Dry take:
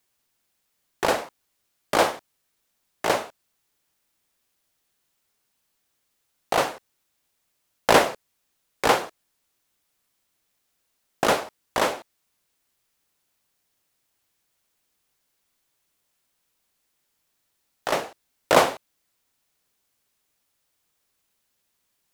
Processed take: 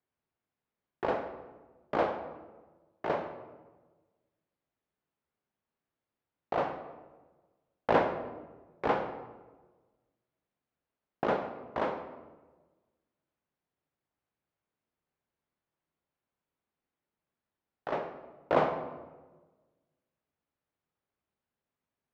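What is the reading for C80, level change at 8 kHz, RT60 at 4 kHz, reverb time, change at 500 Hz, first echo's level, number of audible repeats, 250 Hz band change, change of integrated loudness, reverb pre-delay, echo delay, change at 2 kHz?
10.5 dB, under -30 dB, 0.75 s, 1.3 s, -7.0 dB, none, none, -5.5 dB, -9.5 dB, 8 ms, none, -12.5 dB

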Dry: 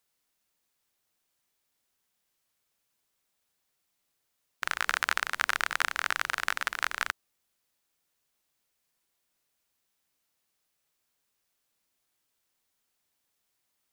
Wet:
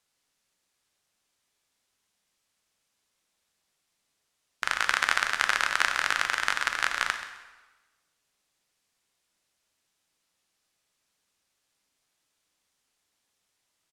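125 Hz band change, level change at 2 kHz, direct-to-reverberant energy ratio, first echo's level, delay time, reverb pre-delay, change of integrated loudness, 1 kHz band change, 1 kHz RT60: n/a, +3.5 dB, 6.0 dB, -13.5 dB, 0.13 s, 7 ms, +3.5 dB, +3.5 dB, 1.2 s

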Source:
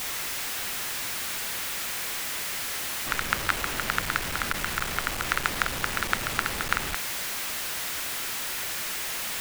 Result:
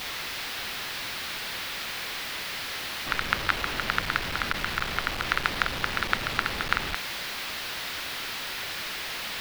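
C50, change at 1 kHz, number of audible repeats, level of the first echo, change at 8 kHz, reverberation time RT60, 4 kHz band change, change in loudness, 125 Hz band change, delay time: none, +0.5 dB, none, none, -8.5 dB, none, +1.5 dB, -1.0 dB, 0.0 dB, none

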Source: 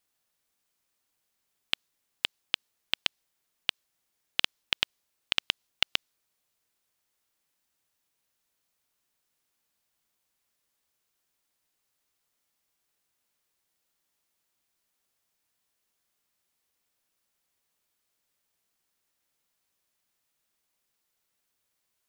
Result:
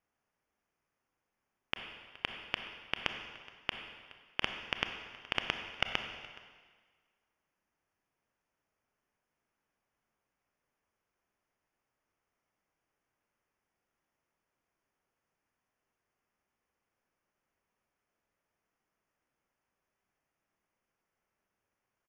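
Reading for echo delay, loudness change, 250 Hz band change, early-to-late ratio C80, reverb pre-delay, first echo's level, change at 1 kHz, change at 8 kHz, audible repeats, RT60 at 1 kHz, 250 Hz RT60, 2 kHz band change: 0.421 s, -7.0 dB, +3.0 dB, 7.5 dB, 26 ms, -21.0 dB, +2.0 dB, -12.5 dB, 1, 1.5 s, 1.5 s, -2.5 dB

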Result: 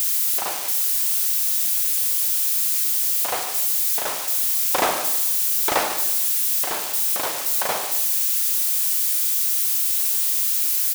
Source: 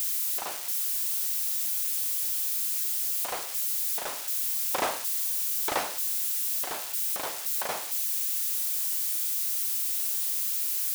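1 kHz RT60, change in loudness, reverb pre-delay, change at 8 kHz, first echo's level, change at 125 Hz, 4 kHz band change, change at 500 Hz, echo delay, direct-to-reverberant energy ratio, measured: 0.95 s, +8.0 dB, 39 ms, +8.0 dB, -13.0 dB, n/a, +8.0 dB, +8.5 dB, 0.144 s, 7.0 dB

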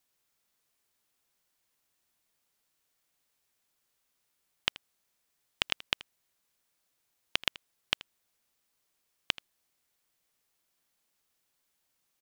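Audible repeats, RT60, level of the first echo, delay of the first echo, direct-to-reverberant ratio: 1, none, -19.0 dB, 81 ms, none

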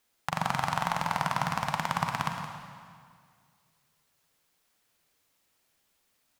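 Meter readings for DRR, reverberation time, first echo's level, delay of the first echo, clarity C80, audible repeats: 3.0 dB, 2.0 s, -11.5 dB, 0.17 s, 4.5 dB, 1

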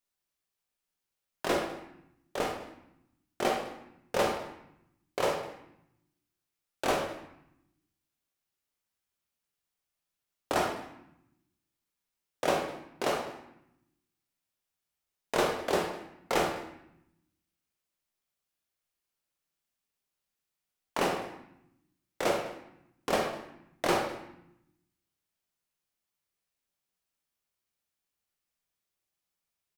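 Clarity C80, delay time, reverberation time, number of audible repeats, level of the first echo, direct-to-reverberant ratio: 8.0 dB, 0.204 s, 0.80 s, 1, -19.5 dB, 1.0 dB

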